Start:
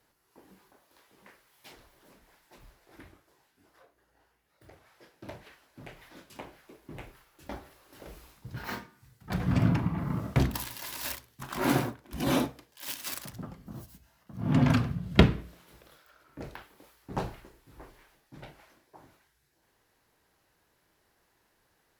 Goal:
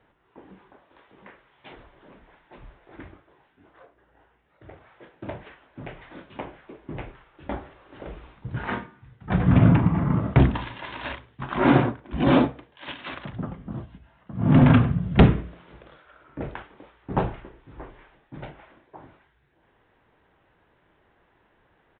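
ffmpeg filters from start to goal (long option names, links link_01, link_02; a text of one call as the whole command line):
ffmpeg -i in.wav -af "aemphasis=mode=reproduction:type=75fm,aresample=8000,asoftclip=type=hard:threshold=-17dB,aresample=44100,volume=8.5dB" out.wav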